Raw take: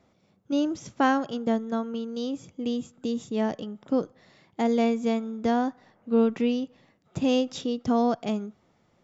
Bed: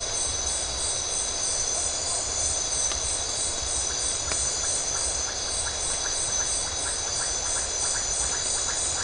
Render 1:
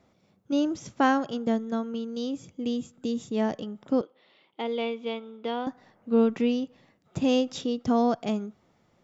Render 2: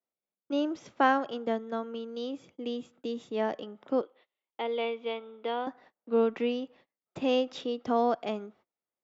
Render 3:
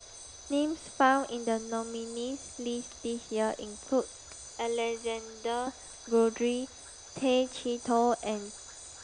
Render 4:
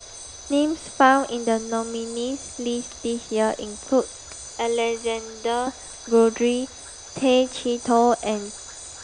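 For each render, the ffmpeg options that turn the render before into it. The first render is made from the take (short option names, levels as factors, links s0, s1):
-filter_complex "[0:a]asettb=1/sr,asplit=3[s0][s1][s2];[s0]atrim=end=1.474[s3];[s1]atrim=start=1.47:end=3.24,asetpts=PTS-STARTPTS,afade=t=in:d=0.004:c=qsin,afade=t=out:st=1.766:d=0.004:c=qsin,equalizer=f=940:t=o:w=1.6:g=-3[s4];[s2]atrim=start=3.236[s5];[s3][s4]acrossfade=d=0.004:c1=hsin:c2=qsin[s6];[s6][s5]acrossfade=d=0.004:c1=qsin:c2=hsin,asettb=1/sr,asplit=3[s7][s8][s9];[s7]atrim=end=4.014[s10];[s8]atrim=start=4.01:end=5.67,asetpts=PTS-STARTPTS,afade=t=in:d=0.004:c=qsin,afade=t=out:st=1.656:d=0.004:c=qsin,highpass=440,equalizer=f=690:t=q:w=4:g=-7,equalizer=f=1100:t=q:w=4:g=-3,equalizer=f=1700:t=q:w=4:g=-10,equalizer=f=3100:t=q:w=4:g=7,lowpass=f=3700:w=0.5412,lowpass=f=3700:w=1.3066[s11];[s9]atrim=start=5.666[s12];[s10][s11]acrossfade=d=0.004:c1=hsin:c2=qsin[s13];[s13][s12]acrossfade=d=0.004:c1=qsin:c2=hsin"
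-filter_complex "[0:a]agate=range=0.0355:threshold=0.00282:ratio=16:detection=peak,acrossover=split=300 4200:gain=0.158 1 0.141[s0][s1][s2];[s0][s1][s2]amix=inputs=3:normalize=0"
-filter_complex "[1:a]volume=0.0944[s0];[0:a][s0]amix=inputs=2:normalize=0"
-af "volume=2.66"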